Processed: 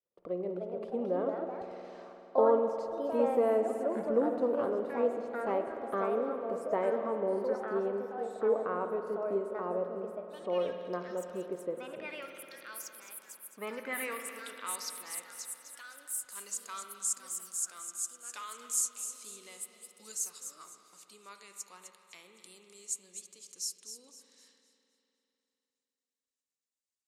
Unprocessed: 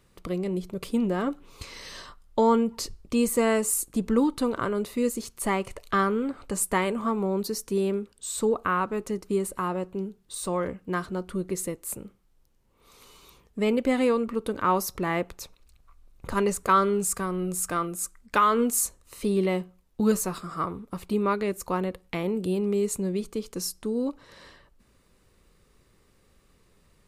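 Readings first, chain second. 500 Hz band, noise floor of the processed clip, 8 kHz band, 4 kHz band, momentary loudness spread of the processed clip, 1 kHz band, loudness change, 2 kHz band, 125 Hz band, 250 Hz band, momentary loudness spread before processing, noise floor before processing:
−4.0 dB, below −85 dBFS, −4.5 dB, −9.0 dB, 17 LU, −10.0 dB, −7.0 dB, −10.5 dB, below −15 dB, −13.5 dB, 11 LU, −63 dBFS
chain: downward expander −48 dBFS
band-pass filter sweep 550 Hz → 6,900 Hz, 0:12.98–0:15.18
delay with a high-pass on its return 255 ms, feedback 34%, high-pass 3,300 Hz, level −9 dB
delay with pitch and tempo change per echo 353 ms, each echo +3 semitones, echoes 2, each echo −6 dB
spring reverb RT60 3.4 s, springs 50 ms, chirp 25 ms, DRR 6 dB

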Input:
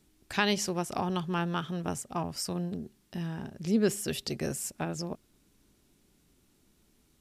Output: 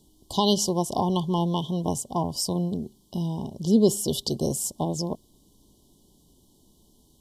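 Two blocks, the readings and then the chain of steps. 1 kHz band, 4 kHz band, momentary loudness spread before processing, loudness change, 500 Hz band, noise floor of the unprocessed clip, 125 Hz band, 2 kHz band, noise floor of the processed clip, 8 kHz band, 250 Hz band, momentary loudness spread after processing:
+6.0 dB, +6.5 dB, 10 LU, +6.5 dB, +7.0 dB, −68 dBFS, +7.0 dB, below −40 dB, −61 dBFS, +7.0 dB, +7.0 dB, 10 LU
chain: linear-phase brick-wall band-stop 1,100–2,900 Hz
level +7 dB

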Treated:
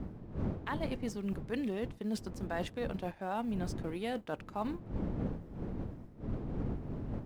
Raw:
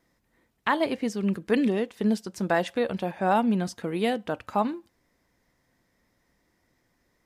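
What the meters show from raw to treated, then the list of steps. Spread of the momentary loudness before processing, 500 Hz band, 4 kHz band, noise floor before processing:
7 LU, −11.0 dB, −10.5 dB, −72 dBFS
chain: mu-law and A-law mismatch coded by A
wind on the microphone 220 Hz −30 dBFS
reversed playback
downward compressor 4 to 1, threshold −35 dBFS, peak gain reduction 17 dB
reversed playback

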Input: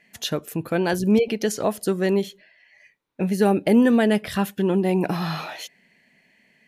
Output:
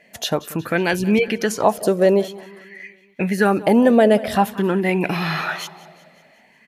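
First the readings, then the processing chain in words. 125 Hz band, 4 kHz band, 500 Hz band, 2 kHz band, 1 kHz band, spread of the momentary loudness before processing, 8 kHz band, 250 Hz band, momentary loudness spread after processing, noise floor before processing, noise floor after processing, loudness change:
+1.5 dB, +3.5 dB, +4.5 dB, +7.0 dB, +7.5 dB, 11 LU, +2.5 dB, +1.5 dB, 14 LU, −62 dBFS, −54 dBFS, +3.0 dB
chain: in parallel at −2 dB: downward compressor, threshold −28 dBFS, peak gain reduction 15 dB
on the sum: repeating echo 184 ms, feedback 58%, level −19 dB
auto-filter bell 0.49 Hz 560–2,400 Hz +13 dB
level −1 dB

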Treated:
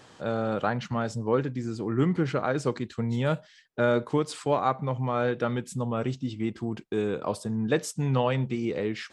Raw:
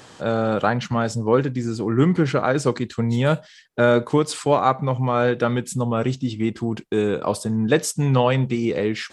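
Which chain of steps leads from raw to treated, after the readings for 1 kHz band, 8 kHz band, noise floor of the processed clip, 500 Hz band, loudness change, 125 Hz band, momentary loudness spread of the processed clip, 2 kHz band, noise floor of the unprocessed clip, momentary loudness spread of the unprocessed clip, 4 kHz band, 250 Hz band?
−7.0 dB, −10.0 dB, −56 dBFS, −7.0 dB, −7.0 dB, −7.0 dB, 6 LU, −7.5 dB, −48 dBFS, 6 LU, −8.0 dB, −7.0 dB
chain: high-shelf EQ 6,800 Hz −5.5 dB
level −7 dB

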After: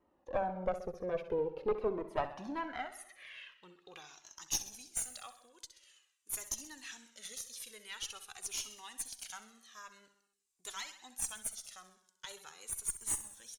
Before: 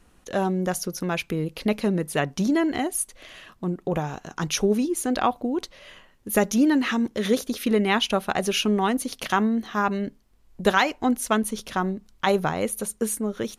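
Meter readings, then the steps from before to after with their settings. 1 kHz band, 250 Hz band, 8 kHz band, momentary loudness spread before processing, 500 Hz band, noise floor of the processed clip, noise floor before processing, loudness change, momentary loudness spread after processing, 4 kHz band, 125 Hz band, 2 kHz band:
−17.0 dB, −26.0 dB, −6.5 dB, 9 LU, −14.0 dB, −77 dBFS, −59 dBFS, −15.0 dB, 17 LU, −15.5 dB, −23.5 dB, −19.5 dB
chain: notch filter 680 Hz, Q 17
band-pass filter sweep 520 Hz → 7,800 Hz, 0:01.78–0:04.60
tube saturation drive 23 dB, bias 0.7
on a send: repeating echo 65 ms, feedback 59%, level −12.5 dB
on the sum: flanger whose copies keep moving one way falling 0.46 Hz
level +6.5 dB

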